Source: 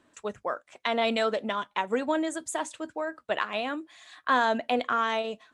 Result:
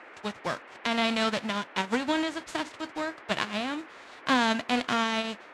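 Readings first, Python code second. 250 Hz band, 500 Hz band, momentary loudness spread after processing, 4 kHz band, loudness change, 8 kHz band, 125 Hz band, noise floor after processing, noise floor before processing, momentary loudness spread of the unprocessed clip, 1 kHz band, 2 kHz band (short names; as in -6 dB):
+3.5 dB, -4.0 dB, 10 LU, +4.5 dB, 0.0 dB, -1.0 dB, n/a, -49 dBFS, -69 dBFS, 10 LU, -2.0 dB, +1.0 dB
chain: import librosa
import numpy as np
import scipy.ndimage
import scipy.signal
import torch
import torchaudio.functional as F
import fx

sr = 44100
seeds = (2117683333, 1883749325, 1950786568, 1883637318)

y = fx.envelope_flatten(x, sr, power=0.3)
y = scipy.signal.sosfilt(scipy.signal.butter(2, 4400.0, 'lowpass', fs=sr, output='sos'), y)
y = fx.dmg_noise_band(y, sr, seeds[0], low_hz=270.0, high_hz=2200.0, level_db=-49.0)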